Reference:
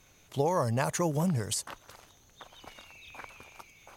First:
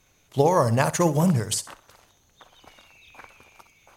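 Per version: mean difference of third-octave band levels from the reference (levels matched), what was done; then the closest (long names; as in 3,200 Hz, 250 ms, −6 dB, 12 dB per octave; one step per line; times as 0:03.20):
6.5 dB: on a send: flutter between parallel walls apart 10.8 metres, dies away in 0.31 s
on the sum: expander for the loud parts 1.5 to 1, over −46 dBFS
level +9 dB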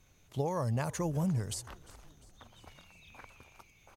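3.5 dB: low-shelf EQ 200 Hz +9 dB
on a send: echo with shifted repeats 350 ms, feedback 61%, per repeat −68 Hz, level −22 dB
on the sum: level −7.5 dB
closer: second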